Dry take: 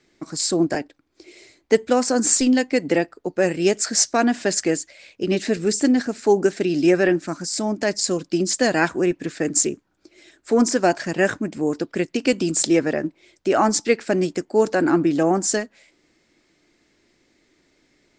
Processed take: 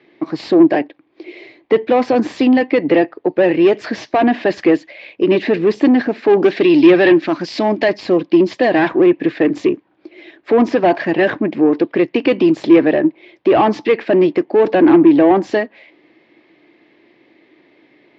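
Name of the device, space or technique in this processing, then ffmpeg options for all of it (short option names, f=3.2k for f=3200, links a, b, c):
overdrive pedal into a guitar cabinet: -filter_complex "[0:a]asplit=2[a][b];[b]highpass=f=720:p=1,volume=22dB,asoftclip=type=tanh:threshold=-3dB[c];[a][c]amix=inputs=2:normalize=0,lowpass=f=1.7k:p=1,volume=-6dB,highpass=90,equalizer=f=130:t=q:w=4:g=5,equalizer=f=320:t=q:w=4:g=6,equalizer=f=1.4k:t=q:w=4:g=-10,lowpass=f=3.5k:w=0.5412,lowpass=f=3.5k:w=1.3066,asettb=1/sr,asplit=3[d][e][f];[d]atrim=end=6.334[g];[e]atrim=start=6.33:end=7.88,asetpts=PTS-STARTPTS,afade=t=in:d=0.004:c=qsin,afade=t=out:st=1.546:d=0.004:c=qsin,equalizer=f=4.3k:t=o:w=2:g=8.5[h];[f]atrim=start=7.876[i];[g][h]acrossfade=d=0.004:c1=hsin:c2=qsin[j];[j][i]acrossfade=d=0.004:c1=qsin:c2=hsin"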